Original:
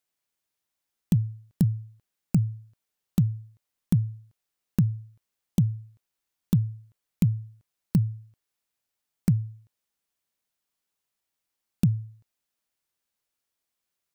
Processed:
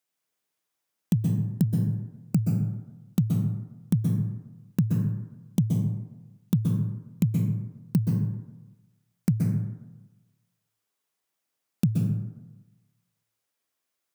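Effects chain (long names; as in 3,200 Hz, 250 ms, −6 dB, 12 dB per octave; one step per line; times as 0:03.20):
high-pass filter 120 Hz
notch filter 4,300 Hz, Q 29
dense smooth reverb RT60 1.1 s, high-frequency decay 0.4×, pre-delay 115 ms, DRR 0 dB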